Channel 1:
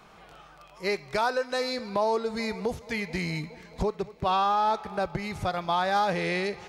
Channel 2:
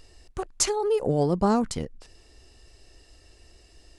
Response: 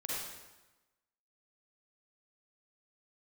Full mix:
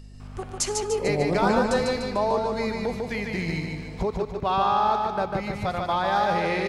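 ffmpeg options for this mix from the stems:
-filter_complex "[0:a]highshelf=frequency=4400:gain=-6.5,aeval=exprs='val(0)+0.00631*(sin(2*PI*50*n/s)+sin(2*PI*2*50*n/s)/2+sin(2*PI*3*50*n/s)/3+sin(2*PI*4*50*n/s)/4+sin(2*PI*5*50*n/s)/5)':channel_layout=same,adelay=200,volume=1dB,asplit=2[link_01][link_02];[link_02]volume=-3.5dB[link_03];[1:a]aeval=exprs='val(0)+0.01*(sin(2*PI*50*n/s)+sin(2*PI*2*50*n/s)/2+sin(2*PI*3*50*n/s)/3+sin(2*PI*4*50*n/s)/4+sin(2*PI*5*50*n/s)/5)':channel_layout=same,volume=-4dB,asplit=3[link_04][link_05][link_06];[link_05]volume=-13dB[link_07];[link_06]volume=-3.5dB[link_08];[2:a]atrim=start_sample=2205[link_09];[link_07][link_09]afir=irnorm=-1:irlink=0[link_10];[link_03][link_08]amix=inputs=2:normalize=0,aecho=0:1:148|296|444|592|740|888|1036:1|0.48|0.23|0.111|0.0531|0.0255|0.0122[link_11];[link_01][link_04][link_10][link_11]amix=inputs=4:normalize=0"

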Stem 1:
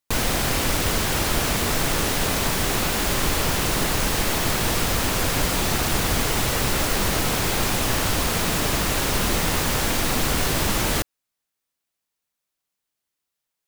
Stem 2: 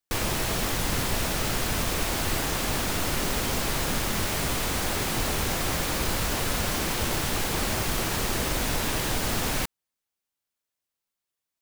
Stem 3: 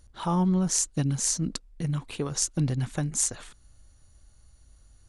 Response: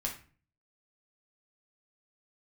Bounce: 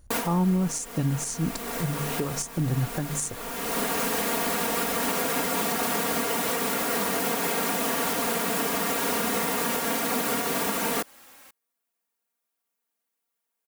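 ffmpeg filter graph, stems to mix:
-filter_complex "[0:a]highpass=240,aecho=1:1:4.3:0.98,volume=-0.5dB[link_01];[1:a]highpass=frequency=1400:poles=1,aecho=1:1:3.7:0.51,adelay=1850,volume=-18dB[link_02];[2:a]bandreject=frequency=73.6:width_type=h:width=4,bandreject=frequency=147.2:width_type=h:width=4,bandreject=frequency=220.8:width_type=h:width=4,volume=2.5dB,asplit=2[link_03][link_04];[link_04]apad=whole_len=603215[link_05];[link_01][link_05]sidechaincompress=threshold=-35dB:ratio=8:attack=8:release=526[link_06];[link_06][link_02][link_03]amix=inputs=3:normalize=0,equalizer=frequency=4400:width=0.61:gain=-7.5,alimiter=limit=-16dB:level=0:latency=1:release=209"

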